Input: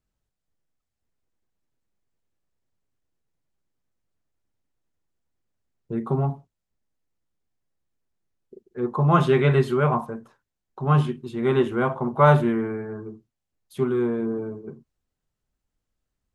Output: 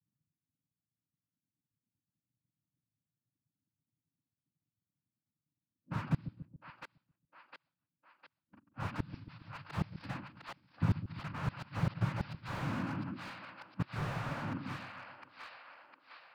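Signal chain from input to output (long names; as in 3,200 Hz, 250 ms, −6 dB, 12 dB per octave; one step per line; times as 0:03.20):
samples in bit-reversed order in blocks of 32 samples
brick-wall band-stop 220–790 Hz
low-pass that shuts in the quiet parts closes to 470 Hz, open at −19 dBFS
cochlear-implant simulation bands 8
downsampling to 11,025 Hz
gate with flip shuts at −18 dBFS, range −34 dB
on a send: echo with a time of its own for lows and highs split 410 Hz, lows 138 ms, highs 706 ms, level −13 dB
on the sum: slew-rate limiting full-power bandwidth 10 Hz
level +2 dB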